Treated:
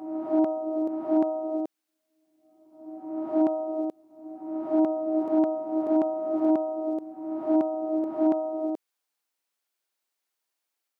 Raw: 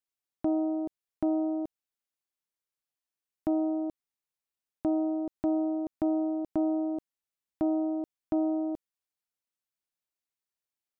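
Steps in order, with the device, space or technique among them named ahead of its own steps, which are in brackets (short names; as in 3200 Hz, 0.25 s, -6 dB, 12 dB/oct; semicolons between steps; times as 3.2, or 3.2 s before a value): ghost voice (reverse; reverb RT60 1.4 s, pre-delay 51 ms, DRR -0.5 dB; reverse; HPF 340 Hz 12 dB/oct); gain +6.5 dB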